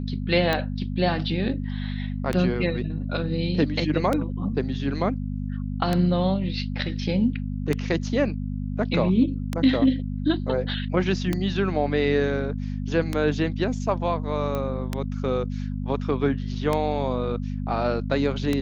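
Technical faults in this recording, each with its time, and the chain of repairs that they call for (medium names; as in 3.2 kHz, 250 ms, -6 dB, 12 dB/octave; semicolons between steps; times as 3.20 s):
hum 50 Hz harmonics 5 -29 dBFS
tick 33 1/3 rpm -10 dBFS
14.55 s: pop -16 dBFS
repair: de-click; de-hum 50 Hz, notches 5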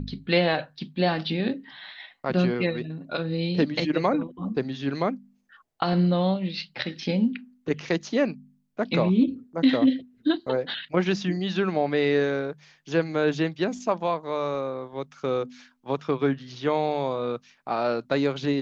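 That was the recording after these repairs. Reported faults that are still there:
nothing left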